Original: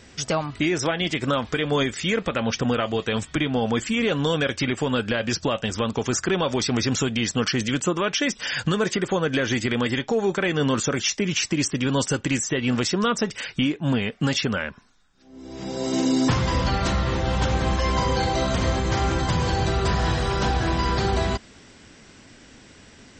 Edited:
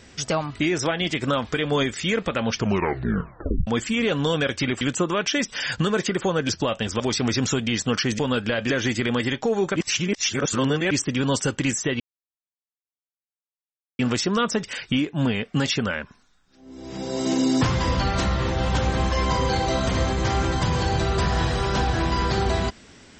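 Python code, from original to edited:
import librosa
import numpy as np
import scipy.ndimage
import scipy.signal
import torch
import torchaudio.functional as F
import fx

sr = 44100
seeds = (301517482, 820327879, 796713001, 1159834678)

y = fx.edit(x, sr, fx.tape_stop(start_s=2.52, length_s=1.15),
    fx.swap(start_s=4.81, length_s=0.51, other_s=7.68, other_length_s=1.68),
    fx.cut(start_s=5.83, length_s=0.66),
    fx.reverse_span(start_s=10.42, length_s=1.15),
    fx.insert_silence(at_s=12.66, length_s=1.99), tone=tone)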